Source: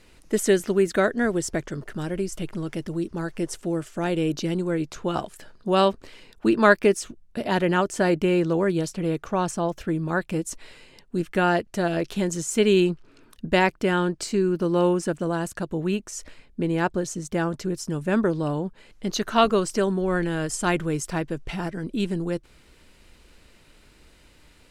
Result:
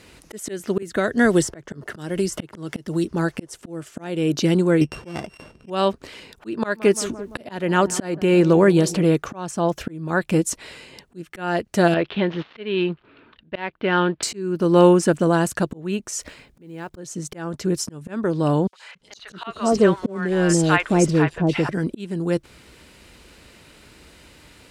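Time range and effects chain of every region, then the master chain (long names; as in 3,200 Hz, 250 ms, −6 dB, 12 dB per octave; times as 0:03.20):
0:00.82–0:03.05: notch filter 2,400 Hz, Q 14 + multiband upward and downward compressor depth 100%
0:04.81–0:05.70: samples sorted by size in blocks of 16 samples + low-pass filter 7,700 Hz + tilt shelving filter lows +4.5 dB, about 700 Hz
0:06.58–0:09.04: upward compression, threshold −27 dBFS + feedback echo with a low-pass in the loop 171 ms, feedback 68%, low-pass 1,200 Hz, level −19.5 dB
0:11.94–0:14.23: gap after every zero crossing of 0.064 ms + Butterworth low-pass 3,700 Hz + low-shelf EQ 440 Hz −7 dB
0:16.15–0:16.97: one scale factor per block 7 bits + downward compressor 16 to 1, threshold −30 dBFS
0:18.67–0:21.69: mu-law and A-law mismatch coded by mu + low-pass filter 7,100 Hz + three-band delay without the direct sound highs, mids, lows 60/280 ms, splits 750/3,500 Hz
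whole clip: high-pass filter 61 Hz 12 dB per octave; volume swells 469 ms; level +8 dB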